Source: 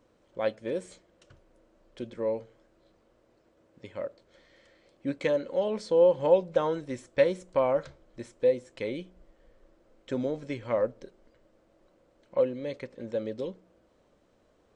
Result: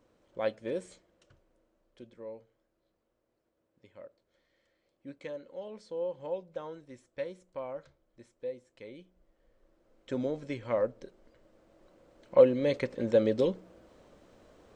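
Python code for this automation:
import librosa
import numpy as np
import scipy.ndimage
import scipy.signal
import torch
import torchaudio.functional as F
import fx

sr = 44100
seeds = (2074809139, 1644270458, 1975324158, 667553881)

y = fx.gain(x, sr, db=fx.line((0.79, -2.5), (2.25, -14.0), (8.89, -14.0), (10.2, -2.0), (10.89, -2.0), (12.79, 7.5)))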